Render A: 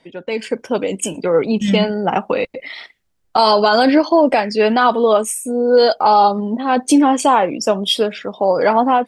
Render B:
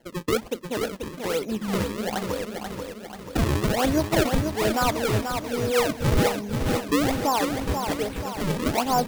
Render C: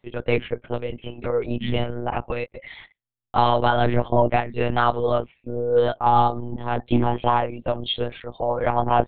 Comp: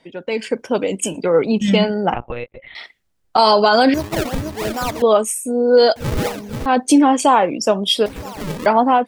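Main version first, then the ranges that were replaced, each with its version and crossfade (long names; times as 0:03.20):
A
0:02.14–0:02.75: punch in from C
0:03.94–0:05.02: punch in from B
0:05.96–0:06.66: punch in from B
0:08.06–0:08.66: punch in from B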